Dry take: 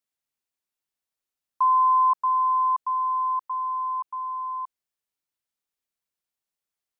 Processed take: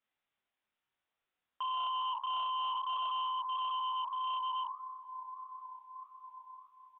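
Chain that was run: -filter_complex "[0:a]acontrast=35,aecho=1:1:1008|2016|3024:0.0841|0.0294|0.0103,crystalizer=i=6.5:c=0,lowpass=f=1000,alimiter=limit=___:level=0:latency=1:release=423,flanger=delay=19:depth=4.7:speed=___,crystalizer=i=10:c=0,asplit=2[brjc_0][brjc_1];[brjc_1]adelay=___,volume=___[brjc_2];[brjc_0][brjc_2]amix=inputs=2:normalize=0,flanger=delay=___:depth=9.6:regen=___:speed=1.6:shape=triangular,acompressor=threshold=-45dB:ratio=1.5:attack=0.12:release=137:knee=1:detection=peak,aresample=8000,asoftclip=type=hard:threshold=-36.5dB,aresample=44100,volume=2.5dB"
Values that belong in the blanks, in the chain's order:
-15dB, 0.6, 32, -7dB, 6.7, -61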